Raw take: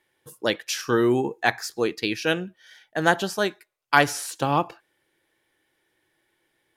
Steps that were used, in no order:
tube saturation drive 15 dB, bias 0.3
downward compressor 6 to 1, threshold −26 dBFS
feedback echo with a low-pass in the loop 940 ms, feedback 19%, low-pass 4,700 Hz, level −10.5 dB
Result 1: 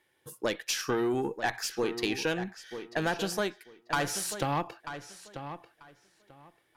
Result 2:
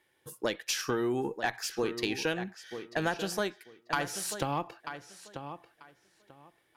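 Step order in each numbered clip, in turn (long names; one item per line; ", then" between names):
tube saturation, then downward compressor, then feedback echo with a low-pass in the loop
downward compressor, then feedback echo with a low-pass in the loop, then tube saturation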